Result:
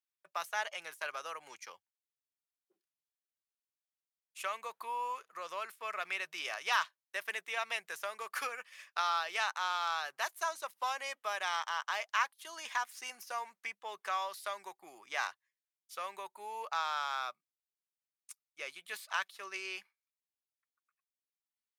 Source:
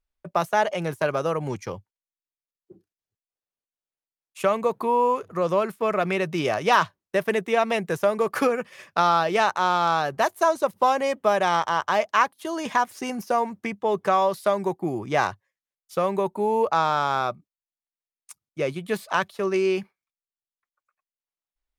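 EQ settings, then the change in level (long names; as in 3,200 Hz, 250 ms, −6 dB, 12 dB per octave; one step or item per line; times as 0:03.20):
high-pass filter 1,500 Hz 12 dB per octave
−6.0 dB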